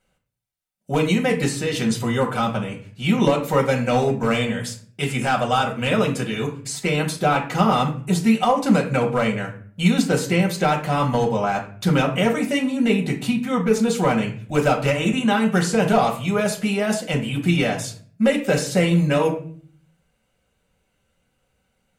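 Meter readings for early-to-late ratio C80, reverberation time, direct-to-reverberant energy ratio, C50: 14.5 dB, 0.50 s, -1.0 dB, 10.0 dB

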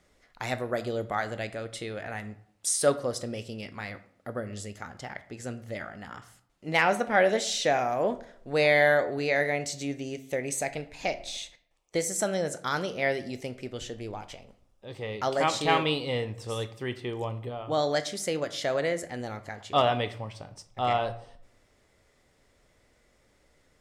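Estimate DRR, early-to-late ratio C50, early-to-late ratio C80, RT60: 11.0 dB, 15.0 dB, 18.5 dB, 0.65 s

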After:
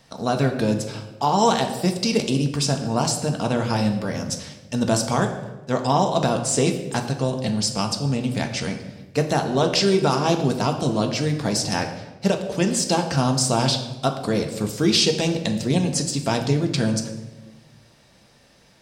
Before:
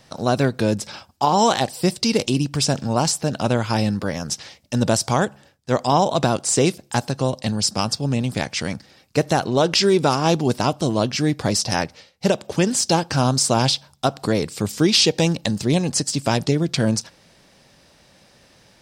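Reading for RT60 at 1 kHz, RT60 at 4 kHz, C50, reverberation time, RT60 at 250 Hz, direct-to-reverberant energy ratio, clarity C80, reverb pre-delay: 1.0 s, 0.80 s, 8.5 dB, 1.2 s, 1.6 s, 4.0 dB, 10.5 dB, 4 ms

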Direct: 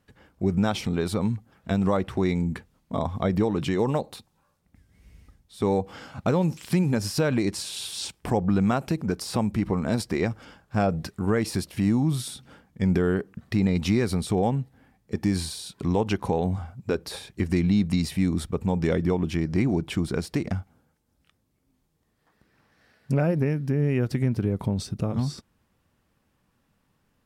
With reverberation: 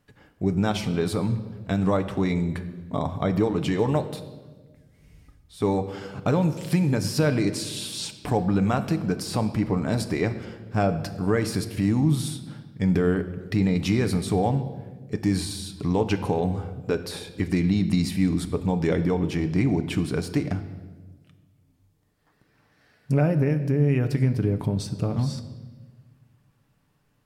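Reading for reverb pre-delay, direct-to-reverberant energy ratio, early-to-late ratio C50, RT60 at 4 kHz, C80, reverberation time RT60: 7 ms, 7.0 dB, 12.5 dB, 1.1 s, 14.0 dB, 1.4 s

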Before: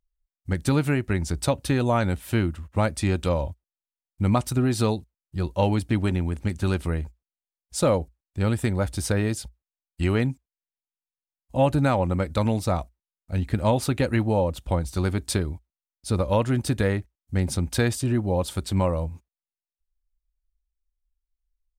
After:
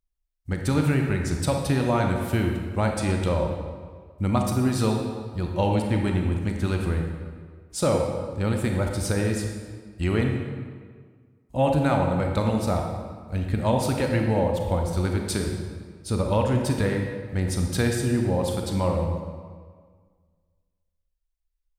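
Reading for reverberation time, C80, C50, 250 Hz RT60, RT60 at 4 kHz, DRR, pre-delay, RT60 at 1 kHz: 1.7 s, 5.0 dB, 3.0 dB, 1.8 s, 1.2 s, 2.0 dB, 29 ms, 1.7 s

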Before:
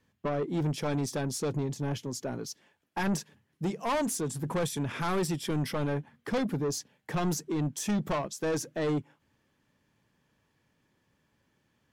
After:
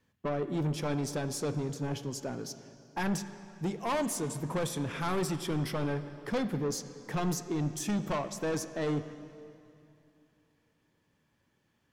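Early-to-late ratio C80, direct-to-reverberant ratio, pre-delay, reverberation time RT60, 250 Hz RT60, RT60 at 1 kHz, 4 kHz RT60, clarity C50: 12.0 dB, 10.0 dB, 10 ms, 2.6 s, 2.9 s, 2.6 s, 2.3 s, 11.0 dB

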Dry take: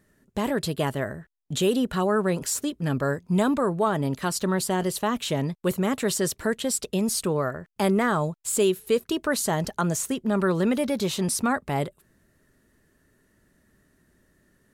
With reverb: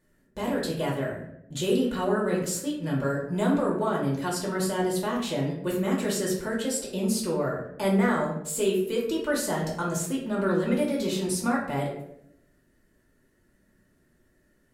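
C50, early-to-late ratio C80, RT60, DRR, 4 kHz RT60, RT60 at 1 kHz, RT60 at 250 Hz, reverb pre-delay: 4.5 dB, 7.5 dB, 0.75 s, -4.0 dB, 0.45 s, 0.65 s, 1.0 s, 3 ms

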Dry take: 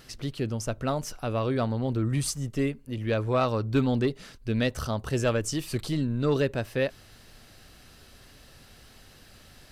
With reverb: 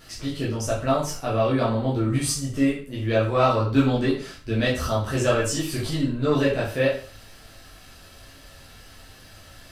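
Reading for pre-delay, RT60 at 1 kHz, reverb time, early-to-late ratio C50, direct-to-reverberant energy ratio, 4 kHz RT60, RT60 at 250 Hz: 9 ms, 0.40 s, 0.45 s, 5.5 dB, -7.5 dB, 0.40 s, 0.40 s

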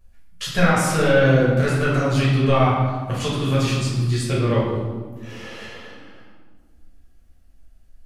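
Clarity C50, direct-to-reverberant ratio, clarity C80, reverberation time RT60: 0.5 dB, -7.0 dB, 3.0 dB, 1.6 s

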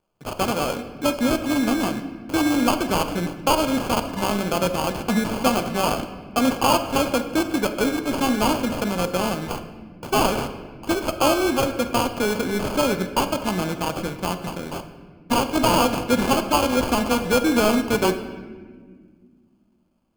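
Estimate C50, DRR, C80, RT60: 10.0 dB, 7.5 dB, 11.5 dB, 1.6 s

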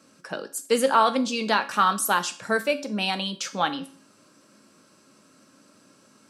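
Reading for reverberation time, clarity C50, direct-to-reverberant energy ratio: 0.45 s, 15.5 dB, 8.0 dB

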